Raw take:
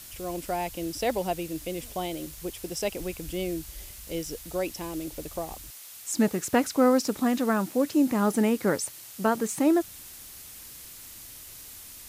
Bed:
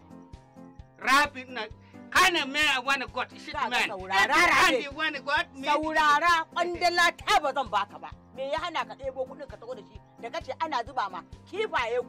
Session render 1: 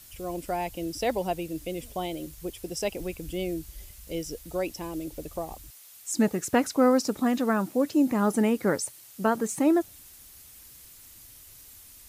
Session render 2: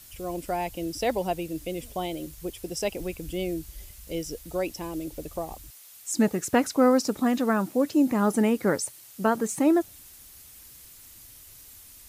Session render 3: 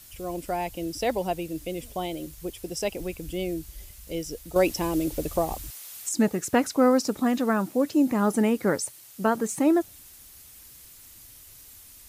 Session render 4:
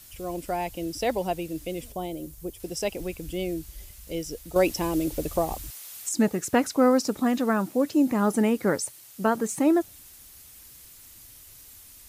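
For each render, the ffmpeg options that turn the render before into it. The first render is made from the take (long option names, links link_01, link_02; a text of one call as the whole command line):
ffmpeg -i in.wav -af "afftdn=noise_reduction=7:noise_floor=-45" out.wav
ffmpeg -i in.wav -af "volume=1dB" out.wav
ffmpeg -i in.wav -filter_complex "[0:a]asplit=3[link_01][link_02][link_03];[link_01]atrim=end=4.562[link_04];[link_02]atrim=start=4.558:end=6.092,asetpts=PTS-STARTPTS,volume=7.5dB[link_05];[link_03]atrim=start=6.088[link_06];[link_04][link_05]acrossfade=duration=0.004:curve1=hsin:curve2=hsin[link_07];[link_07][link_06]acrossfade=duration=0.004:curve1=hsin:curve2=hsin" out.wav
ffmpeg -i in.wav -filter_complex "[0:a]asettb=1/sr,asplit=3[link_01][link_02][link_03];[link_01]atrim=end=1.924[link_04];[link_02]atrim=start=1.92:end=2.6,asetpts=PTS-STARTPTS,afade=type=in:duration=0.004:curve=qsin,afade=type=out:start_time=0.676:duration=0.004:curve=qsin,equalizer=frequency=2700:width=0.43:gain=-8[link_05];[link_03]atrim=start=2.596[link_06];[link_04][link_05]acrossfade=duration=0.004:curve1=hsin:curve2=qsin[link_07];[link_07][link_06]acrossfade=duration=0.004:curve1=qsin:curve2=hsin" out.wav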